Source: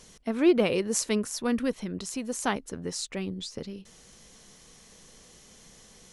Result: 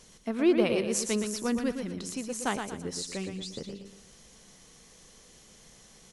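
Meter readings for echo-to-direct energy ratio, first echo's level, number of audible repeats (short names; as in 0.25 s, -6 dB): -6.0 dB, -6.5 dB, 4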